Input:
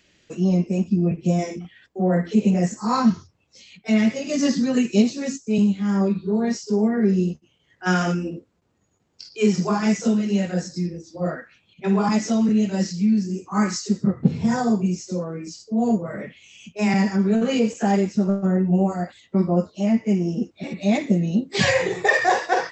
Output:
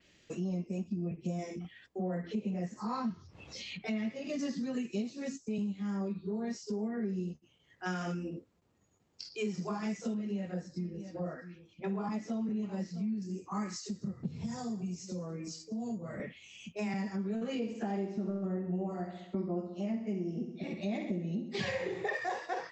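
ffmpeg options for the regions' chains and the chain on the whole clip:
-filter_complex "[0:a]asettb=1/sr,asplit=3[a][b][c];[a]atrim=end=2.244[d];[b]atrim=start=2.24:end=4.39,asetpts=PTS-STARTPTS,afade=t=in:d=0.004:c=qsin,afade=t=out:st=2.146:d=0.004:c=qsin,lowpass=5.1k,acompressor=mode=upward:threshold=-27dB:ratio=2.5:attack=3.2:release=140:knee=2.83:detection=peak[e];[c]atrim=start=4.386[f];[d][e]acrossfade=d=0.004:c1=hsin:c2=qsin[g];[g][f]acrossfade=d=0.004:c1=qsin:c2=hsin,asettb=1/sr,asplit=3[h][i][j];[h]atrim=end=10.144[k];[i]atrim=start=10.14:end=13.22,asetpts=PTS-STARTPTS,afade=t=in:d=0.004:c=qsin,afade=t=out:st=3.076:d=0.004:c=qsin,highshelf=f=3.4k:g=-11,aecho=1:1:654:0.126,atrim=end_sample=135828[l];[j]atrim=start=13.216[m];[k][l]acrossfade=d=0.004:c1=hsin:c2=qsin[n];[n][m]acrossfade=d=0.004:c1=qsin:c2=hsin,asettb=1/sr,asplit=3[o][p][q];[o]atrim=end=13.814[r];[p]atrim=start=13.81:end=16.2,asetpts=PTS-STARTPTS,afade=t=in:d=0.004:c=qsin,afade=t=out:st=2.386:d=0.004:c=qsin,acrossover=split=170|3000[s][t][u];[t]acompressor=threshold=-37dB:ratio=2:attack=3.2:release=140:knee=2.83:detection=peak[v];[s][v][u]amix=inputs=3:normalize=0,aecho=1:1:202:0.1,atrim=end_sample=105399[w];[q]atrim=start=16.196[x];[r][w]acrossfade=d=0.004:c1=hsin:c2=qsin[y];[y][x]acrossfade=d=0.004:c1=qsin:c2=hsin,asettb=1/sr,asplit=3[z][aa][ab];[z]atrim=end=17.554[ac];[aa]atrim=start=17.55:end=22.16,asetpts=PTS-STARTPTS,afade=t=in:d=0.004:c=qsin,afade=t=out:st=4.606:d=0.004:c=qsin,lowpass=5.3k,equalizer=f=350:w=4.5:g=6,aecho=1:1:66|132|198|264|330|396:0.355|0.185|0.0959|0.0499|0.0259|0.0135,atrim=end_sample=203301[ad];[ab]atrim=start=22.156[ae];[ac][ad]acrossfade=d=0.004:c1=hsin:c2=qsin[af];[af][ae]acrossfade=d=0.004:c1=qsin:c2=hsin,acompressor=threshold=-32dB:ratio=3,adynamicequalizer=threshold=0.00126:dfrequency=6800:dqfactor=1:tfrequency=6800:tqfactor=1:attack=5:release=100:ratio=0.375:range=2:mode=cutabove:tftype=bell,bandreject=f=1.5k:w=23,volume=-4.5dB"

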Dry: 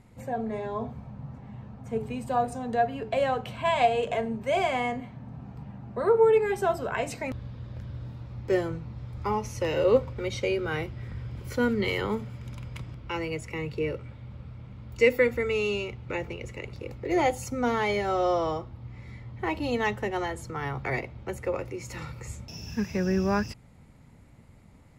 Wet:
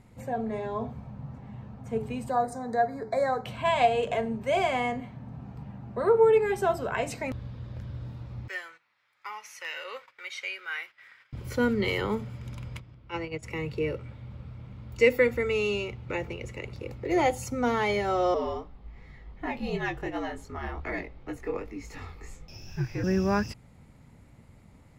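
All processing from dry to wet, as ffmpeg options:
-filter_complex "[0:a]asettb=1/sr,asplit=3[a][b][c];[a]atrim=end=2.304[d];[b]atrim=start=2.3:end=3.45,asetpts=PTS-STARTPTS,afade=t=in:d=0.004:c=qsin,afade=t=out:st=1.146:d=0.004:c=qsin,asuperstop=centerf=2900:order=8:qfactor=1.8,lowshelf=f=130:g=-10.5[e];[c]atrim=start=3.446[f];[d][e]acrossfade=d=0.004:c1=hsin:c2=qsin[g];[g][f]acrossfade=d=0.004:c1=qsin:c2=hsin,asettb=1/sr,asplit=3[h][i][j];[h]atrim=end=8.484[k];[i]atrim=start=8.48:end=11.33,asetpts=PTS-STARTPTS,afade=t=in:d=0.004:c=qsin,afade=t=out:st=2.846:d=0.004:c=qsin,highpass=f=1.8k:t=q:w=1.8,equalizer=f=5.7k:t=o:w=2.9:g=-5,agate=range=-10dB:threshold=-57dB:ratio=16:release=100:detection=peak[l];[j]atrim=start=11.326[m];[k][l]acrossfade=d=0.004:c1=hsin:c2=qsin[n];[n][m]acrossfade=d=0.004:c1=qsin:c2=hsin,asettb=1/sr,asplit=3[o][p][q];[o]atrim=end=12.794[r];[p]atrim=start=12.79:end=13.43,asetpts=PTS-STARTPTS,afade=t=in:d=0.004:c=qsin,afade=t=out:st=0.636:d=0.004:c=qsin,lowpass=5.5k,agate=range=-10dB:threshold=-32dB:ratio=16:release=100:detection=peak[s];[q]atrim=start=13.426[t];[r][s]acrossfade=d=0.004:c1=hsin:c2=qsin[u];[u][t]acrossfade=d=0.004:c1=qsin:c2=hsin,asettb=1/sr,asplit=3[v][w][x];[v]atrim=end=18.344[y];[w]atrim=start=18.34:end=23.04,asetpts=PTS-STARTPTS,afade=t=in:d=0.004:c=qsin,afade=t=out:st=4.696:d=0.004:c=qsin,equalizer=f=9.5k:w=0.82:g=-7,flanger=delay=18.5:depth=5.4:speed=2.7,afreqshift=-67[z];[x]atrim=start=23.036[aa];[y][z]acrossfade=d=0.004:c1=hsin:c2=qsin[ab];[ab][aa]acrossfade=d=0.004:c1=qsin:c2=hsin"

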